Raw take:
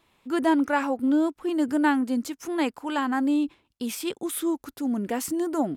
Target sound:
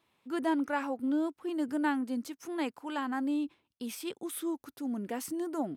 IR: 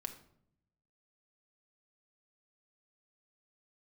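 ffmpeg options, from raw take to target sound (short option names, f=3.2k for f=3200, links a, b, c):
-af "highpass=89,bandreject=f=7.2k:w=12,volume=-8dB"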